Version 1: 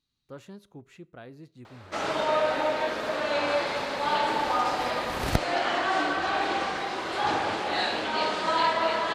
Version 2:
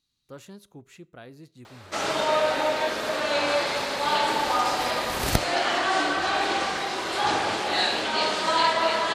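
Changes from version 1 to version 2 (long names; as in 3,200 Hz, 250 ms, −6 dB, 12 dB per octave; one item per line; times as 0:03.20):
background: send +11.0 dB
master: add high-shelf EQ 4,500 Hz +11 dB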